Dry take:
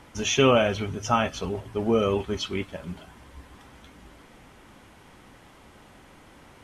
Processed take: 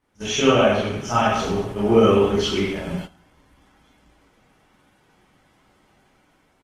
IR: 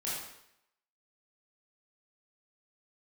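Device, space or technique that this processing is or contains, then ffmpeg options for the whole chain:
speakerphone in a meeting room: -filter_complex "[1:a]atrim=start_sample=2205[link_01];[0:a][link_01]afir=irnorm=-1:irlink=0,asplit=2[link_02][link_03];[link_03]adelay=310,highpass=300,lowpass=3400,asoftclip=type=hard:threshold=-10.5dB,volume=-29dB[link_04];[link_02][link_04]amix=inputs=2:normalize=0,dynaudnorm=framelen=220:gausssize=7:maxgain=7dB,agate=range=-18dB:threshold=-30dB:ratio=16:detection=peak" -ar 48000 -c:a libopus -b:a 20k

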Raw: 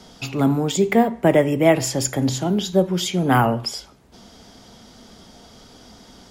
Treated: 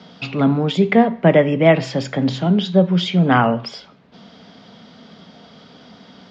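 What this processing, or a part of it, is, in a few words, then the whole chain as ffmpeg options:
kitchen radio: -af "highpass=160,equalizer=frequency=170:width_type=q:width=4:gain=7,equalizer=frequency=350:width_type=q:width=4:gain=-7,equalizer=frequency=850:width_type=q:width=4:gain=-4,lowpass=frequency=4100:width=0.5412,lowpass=frequency=4100:width=1.3066,volume=4dB"

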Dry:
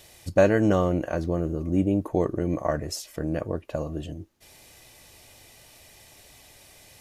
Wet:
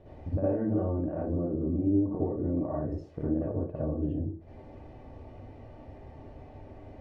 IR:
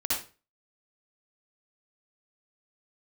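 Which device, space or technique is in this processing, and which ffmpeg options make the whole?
television next door: -filter_complex "[0:a]acompressor=threshold=-40dB:ratio=4,lowpass=580[link_01];[1:a]atrim=start_sample=2205[link_02];[link_01][link_02]afir=irnorm=-1:irlink=0,volume=5dB"

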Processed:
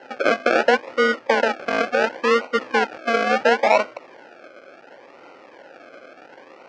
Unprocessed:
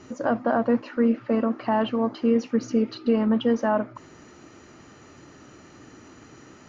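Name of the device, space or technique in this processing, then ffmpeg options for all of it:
circuit-bent sampling toy: -af "acrusher=samples=37:mix=1:aa=0.000001:lfo=1:lforange=22.2:lforate=0.71,highpass=470,equalizer=frequency=530:width_type=q:width=4:gain=10,equalizer=frequency=810:width_type=q:width=4:gain=4,equalizer=frequency=1500:width_type=q:width=4:gain=8,equalizer=frequency=2400:width_type=q:width=4:gain=5,equalizer=frequency=3700:width_type=q:width=4:gain=-7,lowpass=frequency=5000:width=0.5412,lowpass=frequency=5000:width=1.3066,volume=4.5dB"

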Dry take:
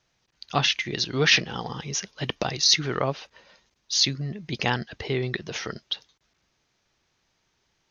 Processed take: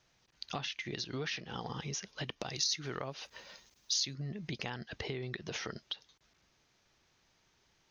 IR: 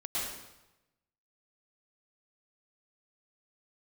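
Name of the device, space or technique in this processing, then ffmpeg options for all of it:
serial compression, peaks first: -filter_complex "[0:a]acompressor=threshold=-31dB:ratio=4,acompressor=threshold=-40dB:ratio=2,asettb=1/sr,asplit=3[link_01][link_02][link_03];[link_01]atrim=end=2.454[link_04];[link_02]atrim=start=2.45:end=4.15,asetpts=PTS-STARTPTS,afade=type=in:duration=0.004:curve=qsin,afade=type=out:start_time=1.696:duration=0.004:curve=qsin,aemphasis=mode=production:type=50kf[link_05];[link_03]atrim=start=4.146[link_06];[link_04][link_05]acrossfade=duration=0.004:curve1=hsin:curve2=qsin[link_07];[link_07][link_06]acrossfade=duration=0.004:curve1=qsin:curve2=hsin"

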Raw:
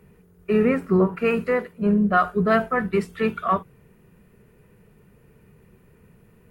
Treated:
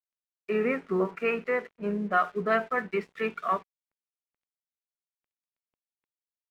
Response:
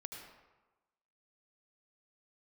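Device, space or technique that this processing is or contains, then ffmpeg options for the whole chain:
pocket radio on a weak battery: -af "highpass=280,lowpass=4100,aeval=exprs='sgn(val(0))*max(abs(val(0))-0.00335,0)':channel_layout=same,equalizer=frequency=2200:width_type=o:width=0.58:gain=5,volume=-5.5dB"

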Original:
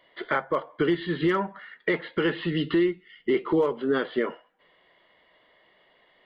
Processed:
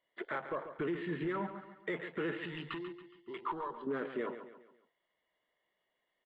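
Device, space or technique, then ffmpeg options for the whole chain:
soft clipper into limiter: -filter_complex "[0:a]asoftclip=type=tanh:threshold=-16dB,alimiter=limit=-23.5dB:level=0:latency=1:release=42,afwtdn=0.01,asettb=1/sr,asplit=3[link_01][link_02][link_03];[link_01]atrim=end=2.444[link_04];[link_02]atrim=start=2.44:end=3.87,asetpts=PTS-STARTPTS,afade=type=in:duration=0.004:curve=qsin,afade=type=out:start_time=1.426:duration=0.004:curve=qsin,equalizer=frequency=125:width_type=o:width=1:gain=-5,equalizer=frequency=250:width_type=o:width=1:gain=-9,equalizer=frequency=500:width_type=o:width=1:gain=-10,equalizer=frequency=1000:width_type=o:width=1:gain=8,equalizer=frequency=2000:width_type=o:width=1:gain=-3,equalizer=frequency=4000:width_type=o:width=1:gain=8[link_05];[link_03]atrim=start=3.866[link_06];[link_04][link_05]acrossfade=duration=0.004:curve1=hsin:curve2=qsin[link_07];[link_07][link_06]acrossfade=duration=0.004:curve1=qsin:curve2=hsin,aecho=1:1:139|278|417|556:0.299|0.125|0.0527|0.0221,volume=-5.5dB"

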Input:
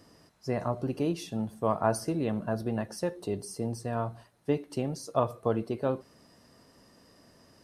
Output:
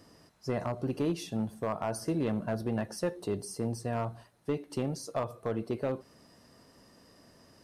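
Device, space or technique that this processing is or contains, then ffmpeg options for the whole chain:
limiter into clipper: -af "alimiter=limit=-18.5dB:level=0:latency=1:release=239,asoftclip=type=hard:threshold=-23dB"

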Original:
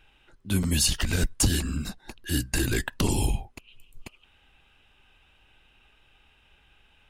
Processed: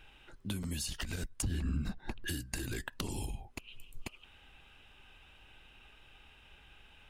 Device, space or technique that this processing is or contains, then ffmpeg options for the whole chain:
serial compression, leveller first: -filter_complex "[0:a]acompressor=threshold=-28dB:ratio=2.5,acompressor=threshold=-37dB:ratio=8,asettb=1/sr,asplit=3[link_01][link_02][link_03];[link_01]atrim=end=1.424[link_04];[link_02]atrim=start=1.42:end=2.28,asetpts=PTS-STARTPTS,afade=type=in:duration=0.004:curve=qsin,afade=type=out:start_time=0.856:duration=0.004:curve=qsin,bass=frequency=250:gain=6,treble=frequency=4000:gain=-13[link_05];[link_03]atrim=start=2.276[link_06];[link_04][link_05]acrossfade=duration=0.004:curve1=hsin:curve2=qsin[link_07];[link_07][link_06]acrossfade=duration=0.004:curve1=qsin:curve2=hsin,volume=2dB"

